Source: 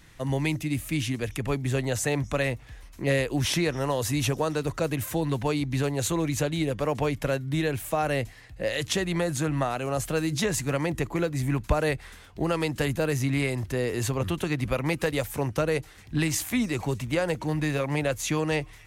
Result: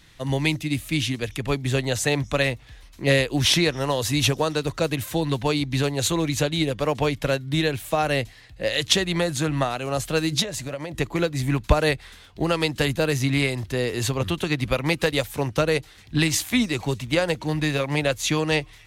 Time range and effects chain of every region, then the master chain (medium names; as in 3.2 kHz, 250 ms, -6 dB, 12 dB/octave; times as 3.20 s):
10.42–10.95 s: peaking EQ 600 Hz +13.5 dB 0.27 oct + compression 16:1, threshold -27 dBFS
whole clip: peaking EQ 3.8 kHz +7.5 dB 1 oct; upward expansion 1.5:1, over -33 dBFS; trim +6.5 dB